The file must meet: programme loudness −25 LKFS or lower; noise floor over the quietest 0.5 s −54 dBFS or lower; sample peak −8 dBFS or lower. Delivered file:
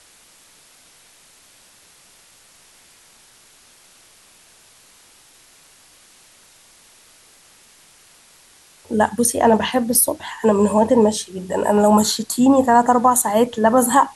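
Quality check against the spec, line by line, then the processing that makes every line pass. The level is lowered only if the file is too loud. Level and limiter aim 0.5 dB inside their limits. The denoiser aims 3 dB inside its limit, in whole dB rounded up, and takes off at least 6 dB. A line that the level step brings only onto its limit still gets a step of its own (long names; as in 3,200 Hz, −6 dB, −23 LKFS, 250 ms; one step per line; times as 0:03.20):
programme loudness −16.5 LKFS: out of spec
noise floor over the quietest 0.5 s −51 dBFS: out of spec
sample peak −4.0 dBFS: out of spec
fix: level −9 dB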